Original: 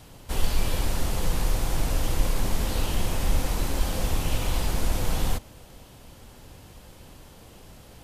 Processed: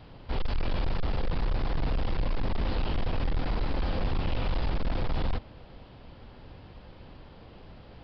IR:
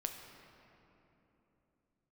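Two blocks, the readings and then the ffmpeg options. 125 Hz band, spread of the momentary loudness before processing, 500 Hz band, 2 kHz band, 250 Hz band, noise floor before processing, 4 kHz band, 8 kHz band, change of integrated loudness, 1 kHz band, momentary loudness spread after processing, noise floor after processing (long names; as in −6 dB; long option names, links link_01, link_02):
−2.5 dB, 21 LU, −2.5 dB, −4.0 dB, −2.0 dB, −49 dBFS, −7.0 dB, below −35 dB, −4.0 dB, −2.5 dB, 18 LU, −50 dBFS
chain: -af "lowpass=frequency=2600:poles=1,aresample=11025,asoftclip=type=hard:threshold=-23dB,aresample=44100"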